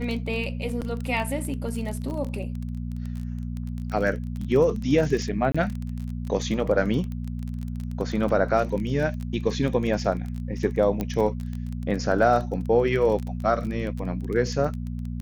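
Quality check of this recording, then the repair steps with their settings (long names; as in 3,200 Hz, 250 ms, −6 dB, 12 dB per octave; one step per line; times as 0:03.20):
surface crackle 23 per second −29 dBFS
mains hum 60 Hz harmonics 4 −31 dBFS
0:00.81–0:00.82: drop-out 8.2 ms
0:05.52–0:05.54: drop-out 25 ms
0:11.01: click −14 dBFS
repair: click removal
hum removal 60 Hz, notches 4
repair the gap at 0:00.81, 8.2 ms
repair the gap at 0:05.52, 25 ms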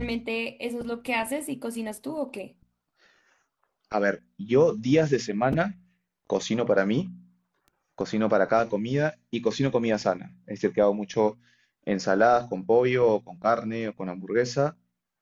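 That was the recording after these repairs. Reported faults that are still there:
none of them is left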